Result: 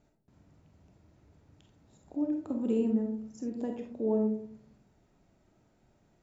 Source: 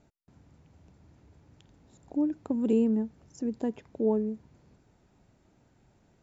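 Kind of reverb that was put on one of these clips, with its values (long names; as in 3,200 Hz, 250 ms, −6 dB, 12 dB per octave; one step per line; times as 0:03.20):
comb and all-pass reverb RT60 0.59 s, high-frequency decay 0.3×, pre-delay 5 ms, DRR 2 dB
level −5 dB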